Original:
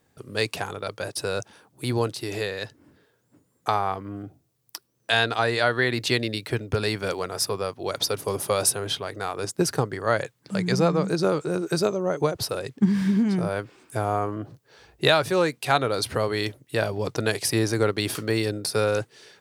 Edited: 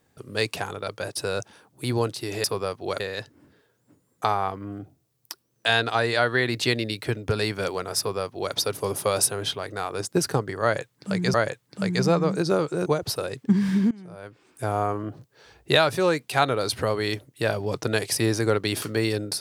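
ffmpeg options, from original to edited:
ffmpeg -i in.wav -filter_complex "[0:a]asplit=6[link_01][link_02][link_03][link_04][link_05][link_06];[link_01]atrim=end=2.442[link_07];[link_02]atrim=start=7.418:end=7.982[link_08];[link_03]atrim=start=2.438:end=10.782[link_09];[link_04]atrim=start=10.068:end=11.592[link_10];[link_05]atrim=start=12.188:end=13.24,asetpts=PTS-STARTPTS,afade=type=out:start_time=1.048:duration=0.004:curve=hsin:silence=0.0944061[link_11];[link_06]atrim=start=13.24,asetpts=PTS-STARTPTS,afade=type=in:duration=0.79:curve=qua:silence=0.0944061[link_12];[link_07][link_08]acrossfade=duration=0.004:curve1=hsin:curve2=hsin[link_13];[link_13][link_09]acrossfade=duration=0.004:curve1=hsin:curve2=hsin[link_14];[link_14][link_10]acrossfade=duration=0.004:curve1=hsin:curve2=hsin[link_15];[link_11][link_12]concat=n=2:v=0:a=1[link_16];[link_15][link_16]acrossfade=duration=0.004:curve1=hsin:curve2=hsin" out.wav

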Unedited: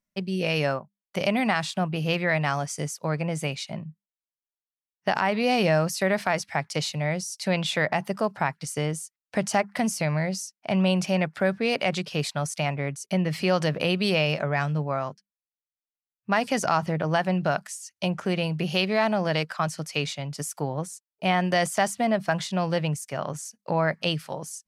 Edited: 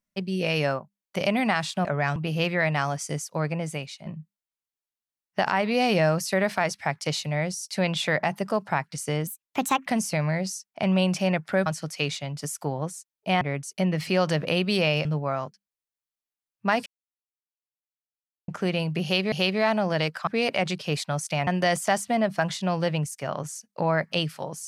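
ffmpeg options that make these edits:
ffmpeg -i in.wav -filter_complex "[0:a]asplit=14[link_01][link_02][link_03][link_04][link_05][link_06][link_07][link_08][link_09][link_10][link_11][link_12][link_13][link_14];[link_01]atrim=end=1.852[link_15];[link_02]atrim=start=14.378:end=14.692[link_16];[link_03]atrim=start=1.848:end=3.75,asetpts=PTS-STARTPTS,afade=type=out:start_time=1.312:duration=0.59:silence=0.334965[link_17];[link_04]atrim=start=3.75:end=8.964,asetpts=PTS-STARTPTS,afade=type=in:duration=0.004:curve=hsin:silence=0.334965[link_18];[link_05]atrim=start=8.96:end=9.74,asetpts=PTS-STARTPTS,asetrate=58212,aresample=44100,atrim=end_sample=26059,asetpts=PTS-STARTPTS[link_19];[link_06]atrim=start=9.736:end=11.542[link_20];[link_07]atrim=start=19.618:end=21.372[link_21];[link_08]atrim=start=12.738:end=14.382[link_22];[link_09]atrim=start=14.688:end=16.5,asetpts=PTS-STARTPTS,afade=type=out:start_time=1.808:duration=0.004:curve=hsin[link_23];[link_10]atrim=start=16.5:end=18.12,asetpts=PTS-STARTPTS,volume=0[link_24];[link_11]atrim=start=18.12:end=18.962,asetpts=PTS-STARTPTS,afade=type=in:duration=0.004:curve=hsin[link_25];[link_12]atrim=start=18.668:end=19.622[link_26];[link_13]atrim=start=11.538:end=12.742[link_27];[link_14]atrim=start=21.368[link_28];[link_15][link_16]acrossfade=duration=0.004:curve1=hsin:curve2=hsin[link_29];[link_17][link_18]concat=n=2:v=0:a=1[link_30];[link_29][link_30]acrossfade=duration=0.004:curve1=hsin:curve2=hsin[link_31];[link_31][link_19]acrossfade=duration=0.004:curve1=hsin:curve2=hsin[link_32];[link_32][link_20]acrossfade=duration=0.004:curve1=hsin:curve2=hsin[link_33];[link_33][link_21]acrossfade=duration=0.004:curve1=hsin:curve2=hsin[link_34];[link_34][link_22]acrossfade=duration=0.004:curve1=hsin:curve2=hsin[link_35];[link_23][link_24][link_25]concat=n=3:v=0:a=1[link_36];[link_35][link_36]acrossfade=duration=0.004:curve1=hsin:curve2=hsin[link_37];[link_37][link_26]acrossfade=duration=0.004:curve1=hsin:curve2=hsin[link_38];[link_38][link_27]acrossfade=duration=0.004:curve1=hsin:curve2=hsin[link_39];[link_39][link_28]acrossfade=duration=0.004:curve1=hsin:curve2=hsin" out.wav

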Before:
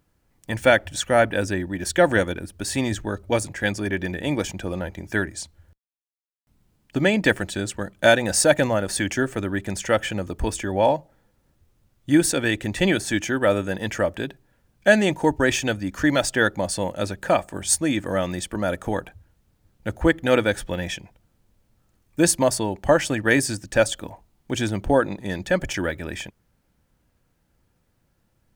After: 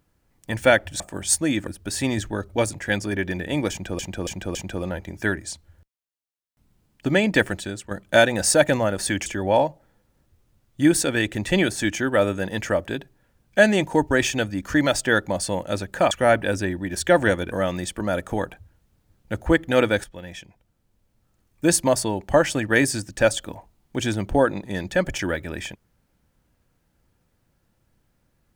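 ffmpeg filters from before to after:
ffmpeg -i in.wav -filter_complex "[0:a]asplit=11[link_01][link_02][link_03][link_04][link_05][link_06][link_07][link_08][link_09][link_10][link_11];[link_01]atrim=end=1.002[link_12];[link_02]atrim=start=17.398:end=18.072[link_13];[link_03]atrim=start=2.408:end=4.732[link_14];[link_04]atrim=start=4.448:end=4.732[link_15];[link_05]atrim=start=4.448:end=4.732[link_16];[link_06]atrim=start=4.448:end=7.81,asetpts=PTS-STARTPTS,afade=type=out:start_time=3.002:duration=0.36:curve=qua:silence=0.421697[link_17];[link_07]atrim=start=7.81:end=9.162,asetpts=PTS-STARTPTS,afade=type=in:duration=0.004:curve=hsin:silence=0.421697[link_18];[link_08]atrim=start=10.548:end=17.402[link_19];[link_09]atrim=start=0.998:end=2.412[link_20];[link_10]atrim=start=18.068:end=20.59,asetpts=PTS-STARTPTS,afade=type=out:start_time=2.518:duration=0.004:curve=hsin:silence=0.223872[link_21];[link_11]atrim=start=20.59,asetpts=PTS-STARTPTS,afade=type=in:duration=1.8:silence=0.223872[link_22];[link_12][link_13]acrossfade=duration=0.004:curve1=hsin:curve2=hsin[link_23];[link_23][link_14]acrossfade=duration=0.004:curve1=hsin:curve2=hsin[link_24];[link_24][link_15]acrossfade=duration=0.004:curve1=hsin:curve2=hsin[link_25];[link_25][link_16]acrossfade=duration=0.004:curve1=hsin:curve2=hsin[link_26];[link_17][link_18]concat=n=2:v=0:a=1[link_27];[link_26][link_27]acrossfade=duration=0.004:curve1=hsin:curve2=hsin[link_28];[link_28][link_19]acrossfade=duration=0.004:curve1=hsin:curve2=hsin[link_29];[link_29][link_20]acrossfade=duration=0.004:curve1=hsin:curve2=hsin[link_30];[link_21][link_22]concat=n=2:v=0:a=1[link_31];[link_30][link_31]acrossfade=duration=0.004:curve1=hsin:curve2=hsin" out.wav

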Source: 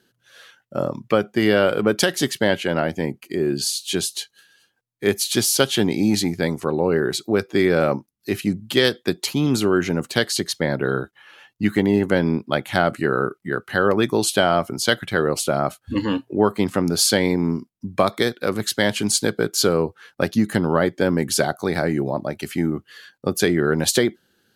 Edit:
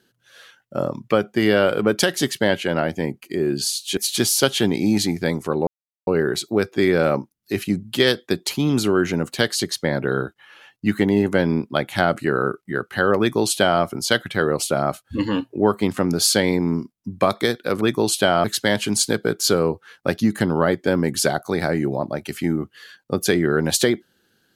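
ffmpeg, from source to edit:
ffmpeg -i in.wav -filter_complex "[0:a]asplit=5[link_01][link_02][link_03][link_04][link_05];[link_01]atrim=end=3.972[link_06];[link_02]atrim=start=5.138:end=6.84,asetpts=PTS-STARTPTS,afade=type=out:start_time=1.698:duration=0.004:curve=hsin,apad=pad_dur=0.4[link_07];[link_03]atrim=start=6.84:end=18.582,asetpts=PTS-STARTPTS,afade=type=in:duration=0.004:curve=hsin[link_08];[link_04]atrim=start=13.958:end=14.592[link_09];[link_05]atrim=start=18.578[link_10];[link_07][link_08]concat=n=2:v=0:a=1[link_11];[link_06][link_11]acrossfade=duration=0.004:curve1=hsin:curve2=hsin[link_12];[link_12][link_09]acrossfade=duration=0.004:curve1=hsin:curve2=hsin[link_13];[link_13][link_10]acrossfade=duration=0.004:curve1=hsin:curve2=hsin" out.wav

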